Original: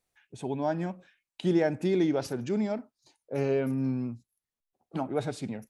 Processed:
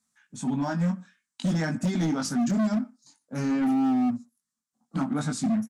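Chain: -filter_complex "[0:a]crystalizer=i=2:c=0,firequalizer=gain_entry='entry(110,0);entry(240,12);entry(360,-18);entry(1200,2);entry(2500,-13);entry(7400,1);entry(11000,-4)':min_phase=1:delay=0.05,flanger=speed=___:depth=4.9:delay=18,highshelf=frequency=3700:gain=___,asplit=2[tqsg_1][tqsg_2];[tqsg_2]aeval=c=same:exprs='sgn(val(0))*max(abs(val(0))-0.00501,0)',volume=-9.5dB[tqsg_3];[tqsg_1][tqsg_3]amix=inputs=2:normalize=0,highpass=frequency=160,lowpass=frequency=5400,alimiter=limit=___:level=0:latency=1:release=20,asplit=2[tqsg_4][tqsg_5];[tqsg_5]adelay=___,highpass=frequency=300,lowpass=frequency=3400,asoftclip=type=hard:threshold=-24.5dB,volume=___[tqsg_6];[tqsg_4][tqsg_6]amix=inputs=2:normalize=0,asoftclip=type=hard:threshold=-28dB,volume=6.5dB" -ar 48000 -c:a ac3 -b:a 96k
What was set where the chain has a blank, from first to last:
0.53, 8, -16dB, 120, -25dB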